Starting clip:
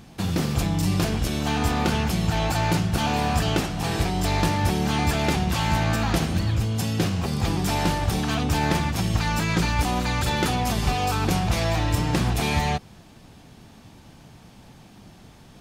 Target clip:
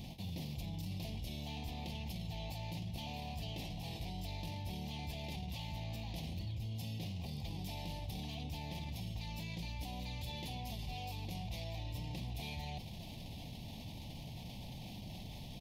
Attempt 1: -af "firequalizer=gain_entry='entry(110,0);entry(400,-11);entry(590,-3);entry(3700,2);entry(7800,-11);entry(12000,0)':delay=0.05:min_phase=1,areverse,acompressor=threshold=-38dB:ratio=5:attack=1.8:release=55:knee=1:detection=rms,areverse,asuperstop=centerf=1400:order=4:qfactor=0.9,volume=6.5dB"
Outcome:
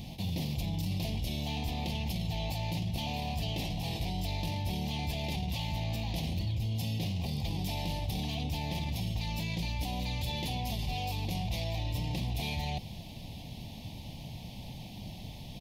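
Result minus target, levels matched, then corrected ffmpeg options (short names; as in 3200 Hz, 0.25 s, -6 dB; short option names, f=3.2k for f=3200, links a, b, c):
compressor: peak gain reduction -9 dB
-af "firequalizer=gain_entry='entry(110,0);entry(400,-11);entry(590,-3);entry(3700,2);entry(7800,-11);entry(12000,0)':delay=0.05:min_phase=1,areverse,acompressor=threshold=-49dB:ratio=5:attack=1.8:release=55:knee=1:detection=rms,areverse,asuperstop=centerf=1400:order=4:qfactor=0.9,volume=6.5dB"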